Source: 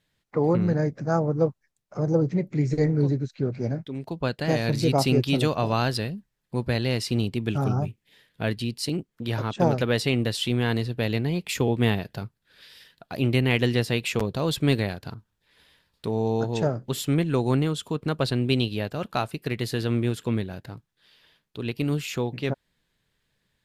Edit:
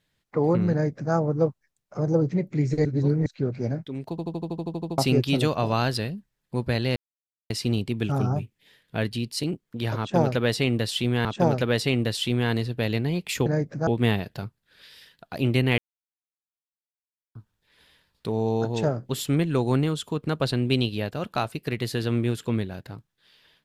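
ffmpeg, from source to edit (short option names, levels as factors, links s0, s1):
-filter_complex "[0:a]asplit=20[s0][s1][s2][s3][s4][s5][s6][s7][s8][s9][s10][s11][s12][s13][s14][s15][s16][s17][s18][s19];[s0]atrim=end=2.852[s20];[s1]atrim=start=2.848:end=3.262,asetpts=PTS-STARTPTS,areverse[s21];[s2]atrim=start=3.258:end=4.182[s22];[s3]atrim=start=4.098:end=4.182[s23];[s4]atrim=start=4.098:end=4.182[s24];[s5]atrim=start=4.098:end=4.182[s25];[s6]atrim=start=4.098:end=4.182[s26];[s7]atrim=start=4.098:end=4.182[s27];[s8]atrim=start=4.098:end=4.182[s28];[s9]atrim=start=4.098:end=4.182[s29];[s10]atrim=start=4.098:end=4.182[s30];[s11]atrim=start=4.098:end=4.182[s31];[s12]atrim=start=4.098:end=4.182[s32];[s13]atrim=start=4.978:end=6.96,asetpts=PTS-STARTPTS,afade=t=out:st=1.978:d=0.004:c=hsin,apad=pad_dur=0.54[s33];[s14]atrim=start=6.96:end=10.712,asetpts=PTS-STARTPTS,afade=t=in:d=0.004:c=hsin[s34];[s15]atrim=start=9.448:end=11.662[s35];[s16]atrim=start=0.718:end=1.132[s36];[s17]atrim=start=11.658:end=13.57,asetpts=PTS-STARTPTS,afade=t=out:st=1.908:d=0.004:c=hsin[s37];[s18]atrim=start=13.57:end=15.14,asetpts=PTS-STARTPTS,volume=0[s38];[s19]atrim=start=15.14,asetpts=PTS-STARTPTS,afade=t=in:d=0.004:c=hsin[s39];[s20][s21]acrossfade=d=0.004:c1=hsin:c2=hsin[s40];[s40][s22]acrossfade=d=0.004:c1=hsin:c2=hsin[s41];[s41][s23]acrossfade=d=0.004:c1=hsin:c2=hsin[s42];[s42][s24]acrossfade=d=0.004:c1=hsin:c2=hsin[s43];[s43][s25]acrossfade=d=0.004:c1=hsin:c2=hsin[s44];[s44][s26]acrossfade=d=0.004:c1=hsin:c2=hsin[s45];[s45][s27]acrossfade=d=0.004:c1=hsin:c2=hsin[s46];[s46][s28]acrossfade=d=0.004:c1=hsin:c2=hsin[s47];[s47][s29]acrossfade=d=0.004:c1=hsin:c2=hsin[s48];[s48][s30]acrossfade=d=0.004:c1=hsin:c2=hsin[s49];[s49][s31]acrossfade=d=0.004:c1=hsin:c2=hsin[s50];[s50][s32]acrossfade=d=0.004:c1=hsin:c2=hsin[s51];[s33][s34]concat=n=2:v=0:a=1[s52];[s51][s52]acrossfade=d=0.004:c1=hsin:c2=hsin[s53];[s53][s35]acrossfade=d=0.004:c1=hsin:c2=hsin[s54];[s54][s36]acrossfade=d=0.004:c1=hsin:c2=hsin[s55];[s37][s38][s39]concat=n=3:v=0:a=1[s56];[s55][s56]acrossfade=d=0.004:c1=hsin:c2=hsin"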